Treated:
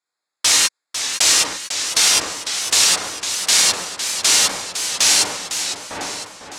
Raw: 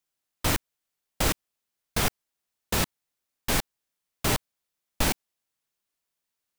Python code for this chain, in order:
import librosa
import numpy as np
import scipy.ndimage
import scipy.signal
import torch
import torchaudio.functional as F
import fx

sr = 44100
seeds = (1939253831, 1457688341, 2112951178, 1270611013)

p1 = fx.wiener(x, sr, points=15)
p2 = fx.weighting(p1, sr, curve='ITU-R 468')
p3 = p2 + fx.echo_wet_lowpass(p2, sr, ms=903, feedback_pct=40, hz=1100.0, wet_db=-5.0, dry=0)
p4 = fx.rev_gated(p3, sr, seeds[0], gate_ms=130, shape='flat', drr_db=-2.5)
p5 = fx.over_compress(p4, sr, threshold_db=-24.0, ratio=-1.0)
p6 = p4 + (p5 * 10.0 ** (2.0 / 20.0))
p7 = fx.dynamic_eq(p6, sr, hz=5900.0, q=0.77, threshold_db=-28.0, ratio=4.0, max_db=6)
p8 = fx.echo_warbled(p7, sr, ms=503, feedback_pct=49, rate_hz=2.8, cents=134, wet_db=-9)
y = p8 * 10.0 ** (-4.0 / 20.0)